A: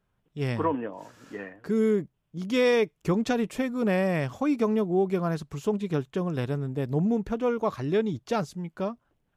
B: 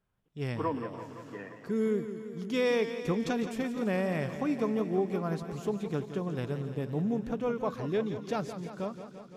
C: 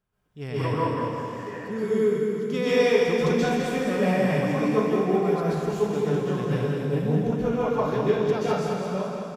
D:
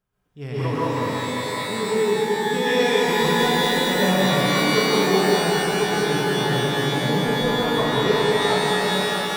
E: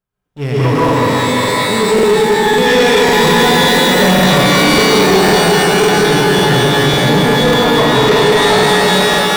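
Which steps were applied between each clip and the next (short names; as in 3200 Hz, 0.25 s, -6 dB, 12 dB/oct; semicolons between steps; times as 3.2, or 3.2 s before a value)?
thin delay 0.148 s, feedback 69%, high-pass 3800 Hz, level -13 dB; warbling echo 0.171 s, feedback 72%, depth 101 cents, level -11 dB; gain -5.5 dB
feedback echo 0.208 s, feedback 52%, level -6 dB; plate-style reverb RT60 0.77 s, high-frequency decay 1×, pre-delay 0.115 s, DRR -7.5 dB; gain -1 dB
shimmer reverb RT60 3.2 s, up +12 st, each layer -2 dB, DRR 2.5 dB
sample leveller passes 3; crackling interface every 0.55 s, samples 2048, repeat, from 0.84; gain +2 dB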